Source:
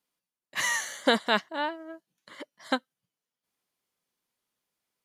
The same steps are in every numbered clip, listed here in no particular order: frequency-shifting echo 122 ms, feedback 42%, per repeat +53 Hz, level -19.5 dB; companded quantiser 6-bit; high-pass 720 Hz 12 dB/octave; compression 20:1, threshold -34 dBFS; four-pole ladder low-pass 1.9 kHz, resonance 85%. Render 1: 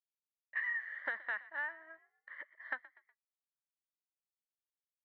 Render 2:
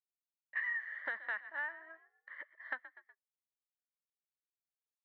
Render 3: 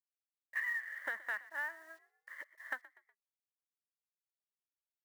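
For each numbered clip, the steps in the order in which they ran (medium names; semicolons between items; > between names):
high-pass > companded quantiser > four-pole ladder low-pass > compression > frequency-shifting echo; companded quantiser > frequency-shifting echo > four-pole ladder low-pass > compression > high-pass; four-pole ladder low-pass > companded quantiser > compression > frequency-shifting echo > high-pass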